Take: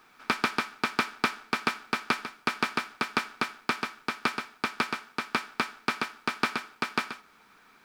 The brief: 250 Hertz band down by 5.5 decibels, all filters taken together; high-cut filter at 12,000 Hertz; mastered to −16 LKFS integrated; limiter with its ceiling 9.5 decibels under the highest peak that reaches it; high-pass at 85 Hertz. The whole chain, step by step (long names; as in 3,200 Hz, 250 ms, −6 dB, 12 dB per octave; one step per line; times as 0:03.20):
high-pass filter 85 Hz
low-pass filter 12,000 Hz
parametric band 250 Hz −6.5 dB
level +19.5 dB
brickwall limiter 0 dBFS